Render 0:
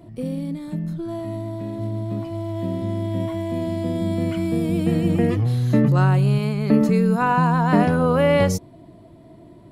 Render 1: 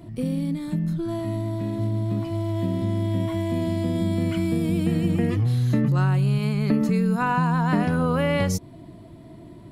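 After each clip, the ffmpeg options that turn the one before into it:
-af "equalizer=f=580:t=o:w=1.5:g=-5.5,acompressor=threshold=0.0562:ratio=2.5,volume=1.58"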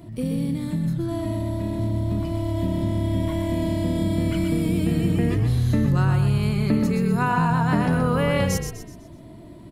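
-filter_complex "[0:a]highshelf=f=6500:g=4,asplit=2[s0][s1];[s1]asplit=5[s2][s3][s4][s5][s6];[s2]adelay=125,afreqshift=-36,volume=0.473[s7];[s3]adelay=250,afreqshift=-72,volume=0.188[s8];[s4]adelay=375,afreqshift=-108,volume=0.0759[s9];[s5]adelay=500,afreqshift=-144,volume=0.0302[s10];[s6]adelay=625,afreqshift=-180,volume=0.0122[s11];[s7][s8][s9][s10][s11]amix=inputs=5:normalize=0[s12];[s0][s12]amix=inputs=2:normalize=0"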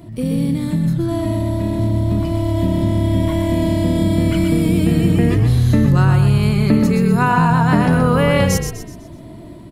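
-af "dynaudnorm=f=100:g=5:m=1.41,volume=1.58"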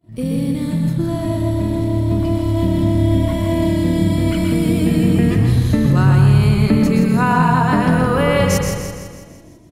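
-filter_complex "[0:a]agate=range=0.0224:threshold=0.0398:ratio=3:detection=peak,asplit=2[s0][s1];[s1]aecho=0:1:166|332|498|664|830|996:0.473|0.246|0.128|0.0665|0.0346|0.018[s2];[s0][s2]amix=inputs=2:normalize=0,volume=0.891"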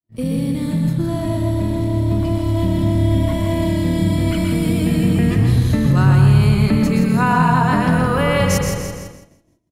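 -filter_complex "[0:a]agate=range=0.0224:threshold=0.0355:ratio=3:detection=peak,acrossover=split=250|550|3600[s0][s1][s2][s3];[s1]alimiter=limit=0.0794:level=0:latency=1[s4];[s0][s4][s2][s3]amix=inputs=4:normalize=0"

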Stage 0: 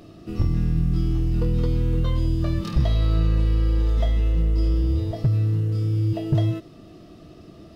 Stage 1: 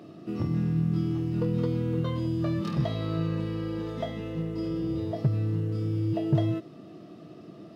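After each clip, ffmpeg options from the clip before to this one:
-af "highpass=f=130:w=0.5412,highpass=f=130:w=1.3066,highshelf=f=3100:g=-9"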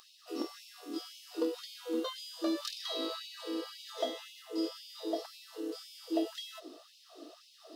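-af "aexciter=amount=7.1:drive=5.8:freq=3300,highshelf=f=2800:g=-10.5,afftfilt=real='re*gte(b*sr/1024,240*pow(2200/240,0.5+0.5*sin(2*PI*1.9*pts/sr)))':imag='im*gte(b*sr/1024,240*pow(2200/240,0.5+0.5*sin(2*PI*1.9*pts/sr)))':win_size=1024:overlap=0.75"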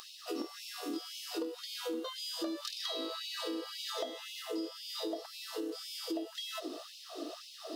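-af "acompressor=threshold=0.00562:ratio=8,volume=2.99"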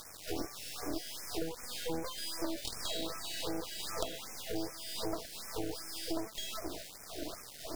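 -af "acrusher=bits=5:dc=4:mix=0:aa=0.000001,afftfilt=real='re*(1-between(b*sr/1024,970*pow(3700/970,0.5+0.5*sin(2*PI*2.6*pts/sr))/1.41,970*pow(3700/970,0.5+0.5*sin(2*PI*2.6*pts/sr))*1.41))':imag='im*(1-between(b*sr/1024,970*pow(3700/970,0.5+0.5*sin(2*PI*2.6*pts/sr))/1.41,970*pow(3700/970,0.5+0.5*sin(2*PI*2.6*pts/sr))*1.41))':win_size=1024:overlap=0.75,volume=1.68"

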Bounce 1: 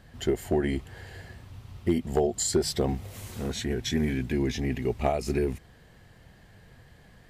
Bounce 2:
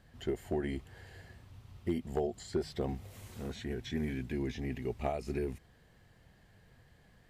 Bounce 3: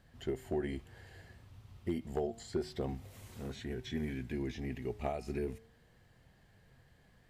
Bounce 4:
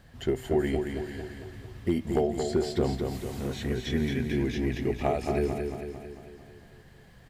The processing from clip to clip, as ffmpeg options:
-filter_complex "[0:a]acrossover=split=3600[s0][s1];[s1]acompressor=threshold=0.00501:ratio=4:attack=1:release=60[s2];[s0][s2]amix=inputs=2:normalize=0,volume=0.376"
-af "flanger=delay=7.4:depth=2.1:regen=90:speed=0.3:shape=sinusoidal,volume=1.33"
-af "aecho=1:1:224|448|672|896|1120|1344|1568:0.531|0.292|0.161|0.0883|0.0486|0.0267|0.0147,volume=2.82"

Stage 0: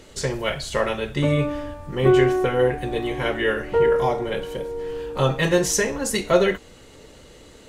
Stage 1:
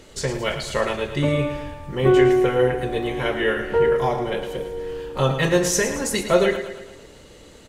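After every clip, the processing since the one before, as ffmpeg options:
-af "aecho=1:1:111|222|333|444|555|666:0.316|0.164|0.0855|0.0445|0.0231|0.012"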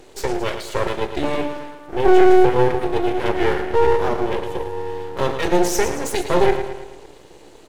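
-af "apsyclip=4.22,highpass=f=350:t=q:w=3.4,aeval=exprs='max(val(0),0)':c=same,volume=0.266"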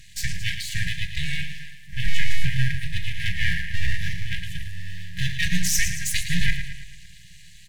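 -af "afftfilt=real='re*(1-between(b*sr/4096,190,1600))':imag='im*(1-between(b*sr/4096,190,1600))':win_size=4096:overlap=0.75,volume=1.41"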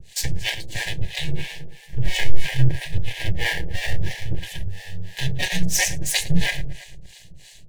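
-filter_complex "[0:a]acrossover=split=280|1500|2100[s0][s1][s2][s3];[s2]acrusher=samples=34:mix=1:aa=0.000001[s4];[s0][s1][s4][s3]amix=inputs=4:normalize=0,acrossover=split=540[s5][s6];[s5]aeval=exprs='val(0)*(1-1/2+1/2*cos(2*PI*3*n/s))':c=same[s7];[s6]aeval=exprs='val(0)*(1-1/2-1/2*cos(2*PI*3*n/s))':c=same[s8];[s7][s8]amix=inputs=2:normalize=0,volume=2.24"

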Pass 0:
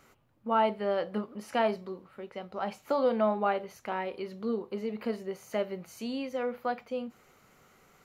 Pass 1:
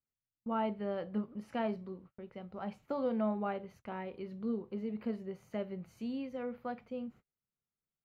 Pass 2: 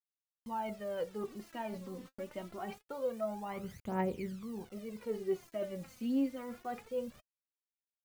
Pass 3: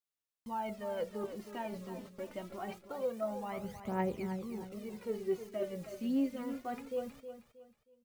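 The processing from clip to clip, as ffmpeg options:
-af "equalizer=f=1100:w=0.47:g=-3,agate=range=0.02:threshold=0.00251:ratio=16:detection=peak,bass=f=250:g=10,treble=f=4000:g=-11,volume=0.447"
-af "areverse,acompressor=threshold=0.00794:ratio=20,areverse,acrusher=bits=10:mix=0:aa=0.000001,aphaser=in_gain=1:out_gain=1:delay=4:decay=0.71:speed=0.25:type=triangular,volume=1.78"
-af "aecho=1:1:316|632|948:0.299|0.0955|0.0306"

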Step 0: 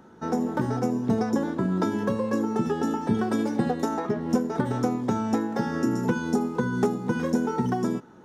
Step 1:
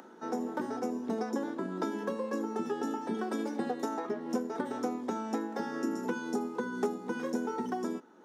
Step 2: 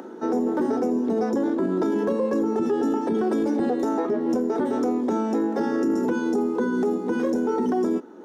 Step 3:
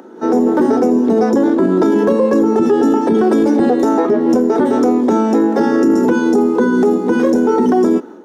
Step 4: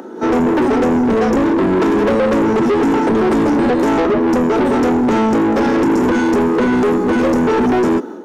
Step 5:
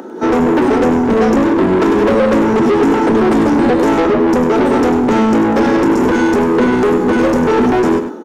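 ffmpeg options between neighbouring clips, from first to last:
-af "highpass=f=240:w=0.5412,highpass=f=240:w=1.3066,acompressor=mode=upward:threshold=0.0112:ratio=2.5,volume=0.473"
-af "equalizer=f=350:t=o:w=1.9:g=11,alimiter=limit=0.0841:level=0:latency=1:release=10,volume=1.88"
-af "dynaudnorm=f=140:g=3:m=3.55"
-af "asoftclip=type=tanh:threshold=0.133,volume=2"
-af "aecho=1:1:99:0.316,volume=1.26"

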